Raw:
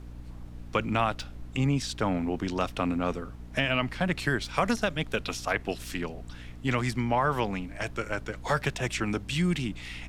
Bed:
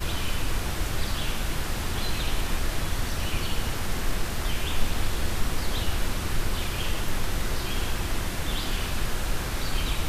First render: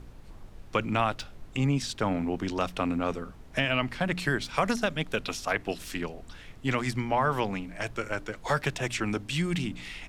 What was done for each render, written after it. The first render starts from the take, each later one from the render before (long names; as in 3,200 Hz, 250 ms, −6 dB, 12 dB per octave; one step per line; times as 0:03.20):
hum removal 60 Hz, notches 5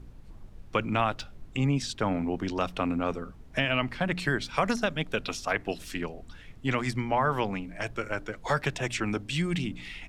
broadband denoise 6 dB, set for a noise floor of −48 dBFS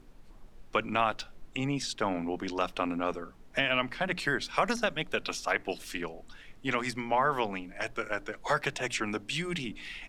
parametric band 74 Hz −13 dB 2.6 octaves
mains-hum notches 60/120/180 Hz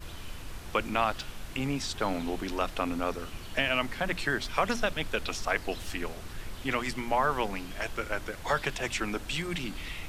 mix in bed −14 dB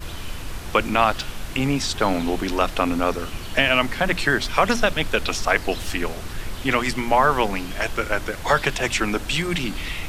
level +9.5 dB
brickwall limiter −3 dBFS, peak gain reduction 1.5 dB